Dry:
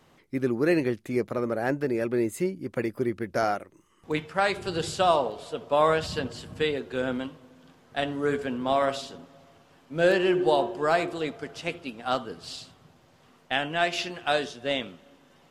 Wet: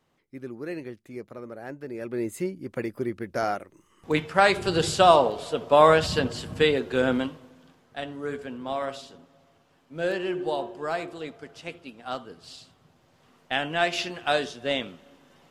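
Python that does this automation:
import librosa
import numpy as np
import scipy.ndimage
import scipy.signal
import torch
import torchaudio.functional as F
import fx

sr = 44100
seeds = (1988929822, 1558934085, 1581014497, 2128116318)

y = fx.gain(x, sr, db=fx.line((1.78, -11.5), (2.29, -2.0), (3.35, -2.0), (4.34, 5.5), (7.21, 5.5), (8.0, -6.0), (12.57, -6.0), (13.74, 1.0)))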